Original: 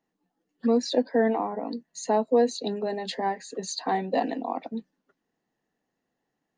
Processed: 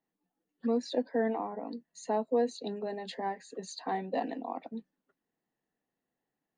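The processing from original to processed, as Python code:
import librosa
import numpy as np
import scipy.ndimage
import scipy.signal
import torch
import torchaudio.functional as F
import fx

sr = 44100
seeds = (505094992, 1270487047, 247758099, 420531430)

y = fx.peak_eq(x, sr, hz=5500.0, db=-5.5, octaves=0.79)
y = y * 10.0 ** (-7.0 / 20.0)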